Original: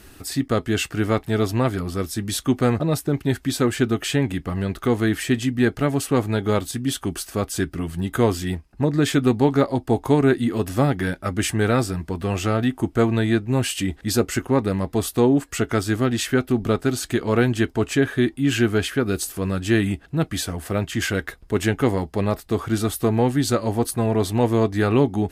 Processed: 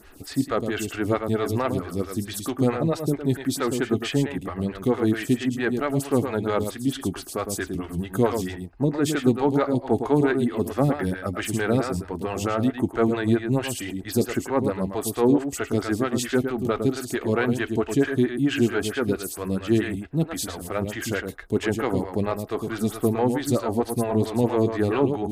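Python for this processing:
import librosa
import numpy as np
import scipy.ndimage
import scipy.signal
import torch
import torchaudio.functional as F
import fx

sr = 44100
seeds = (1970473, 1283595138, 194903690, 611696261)

p1 = x + 10.0 ** (-7.5 / 20.0) * np.pad(x, (int(109 * sr / 1000.0), 0))[:len(x)]
p2 = 10.0 ** (-13.0 / 20.0) * np.tanh(p1 / 10.0 ** (-13.0 / 20.0))
p3 = p1 + (p2 * 10.0 ** (-5.5 / 20.0))
p4 = fx.stagger_phaser(p3, sr, hz=4.5)
y = p4 * 10.0 ** (-3.5 / 20.0)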